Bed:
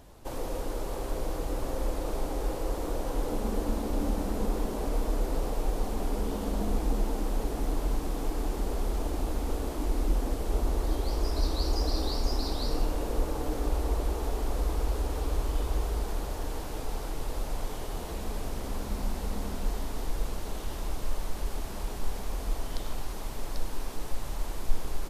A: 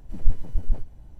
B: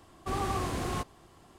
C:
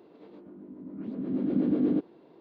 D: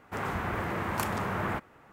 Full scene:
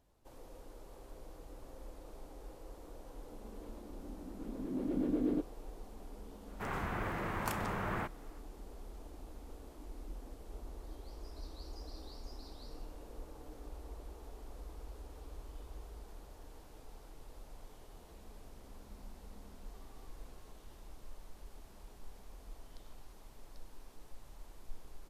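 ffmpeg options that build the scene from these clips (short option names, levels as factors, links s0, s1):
-filter_complex "[0:a]volume=0.106[s0];[3:a]equalizer=f=200:t=o:w=0.74:g=-7[s1];[2:a]acompressor=threshold=0.00562:ratio=6:attack=3.2:release=140:knee=1:detection=peak[s2];[s1]atrim=end=2.4,asetpts=PTS-STARTPTS,volume=0.562,afade=t=in:d=0.004:c=hsin,afade=t=out:st=2.396:d=0.004:c=hsin,adelay=150381S[s3];[4:a]atrim=end=1.92,asetpts=PTS-STARTPTS,volume=0.501,afade=t=in:d=0.004:c=hsin,afade=t=out:st=1.916:d=0.004:c=hsin,adelay=6480[s4];[s2]atrim=end=1.58,asetpts=PTS-STARTPTS,volume=0.133,afade=t=in:d=0.004:c=hsin,afade=t=out:st=1.576:d=0.004:c=hsin,adelay=19490[s5];[s0][s3][s4][s5]amix=inputs=4:normalize=0"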